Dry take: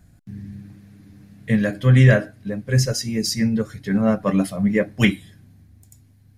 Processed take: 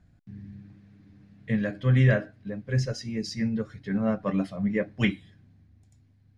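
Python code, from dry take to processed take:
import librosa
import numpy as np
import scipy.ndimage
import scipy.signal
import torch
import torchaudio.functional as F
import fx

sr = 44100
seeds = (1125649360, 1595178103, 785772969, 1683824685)

y = scipy.signal.sosfilt(scipy.signal.butter(2, 4300.0, 'lowpass', fs=sr, output='sos'), x)
y = F.gain(torch.from_numpy(y), -7.5).numpy()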